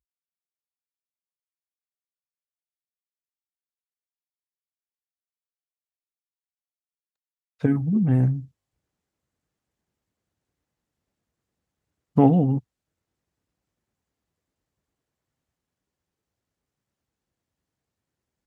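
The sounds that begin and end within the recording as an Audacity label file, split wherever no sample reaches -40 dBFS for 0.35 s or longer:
7.610000	8.450000	sound
12.160000	12.600000	sound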